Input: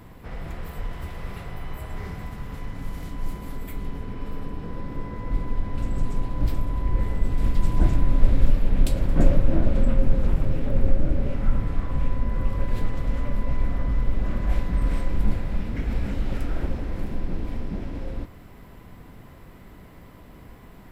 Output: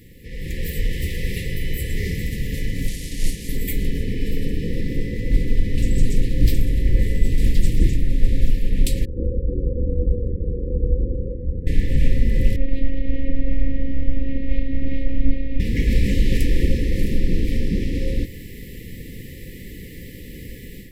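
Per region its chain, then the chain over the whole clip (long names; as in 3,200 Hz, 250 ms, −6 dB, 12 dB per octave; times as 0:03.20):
0:02.88–0:03.49: linear delta modulator 64 kbit/s, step −37 dBFS + mains-hum notches 60/120/180/240/300/360/420/480/540 Hz + expander for the loud parts, over −34 dBFS
0:09.05–0:11.67: transistor ladder low-pass 610 Hz, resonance 60% + ring modulation 44 Hz + one half of a high-frequency compander encoder only
0:12.56–0:15.60: high-frequency loss of the air 430 metres + phases set to zero 271 Hz
whole clip: brick-wall band-stop 540–1,700 Hz; high-shelf EQ 2,600 Hz +7.5 dB; automatic gain control gain up to 10.5 dB; level −1 dB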